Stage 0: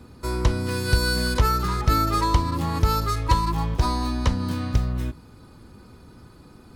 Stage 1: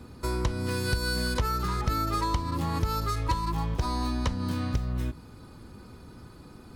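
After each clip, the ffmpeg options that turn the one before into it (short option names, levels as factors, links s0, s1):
-af "acompressor=threshold=0.0501:ratio=3"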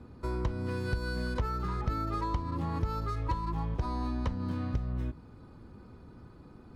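-af "lowpass=f=1400:p=1,volume=0.668"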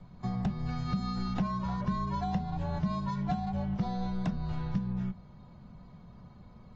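-af "afreqshift=-250" -ar 32000 -c:a aac -b:a 24k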